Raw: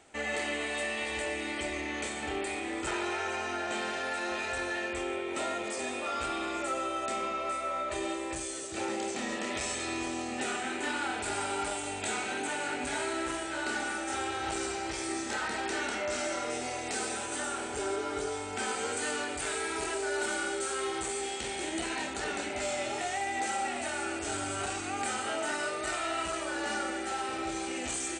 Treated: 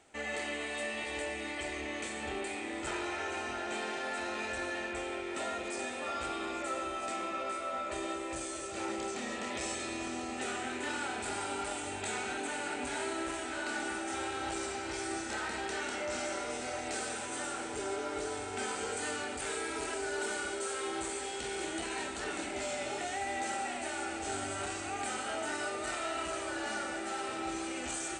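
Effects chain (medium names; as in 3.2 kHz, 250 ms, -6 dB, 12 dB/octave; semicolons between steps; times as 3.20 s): echo whose repeats swap between lows and highs 649 ms, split 900 Hz, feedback 74%, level -7 dB; trim -4 dB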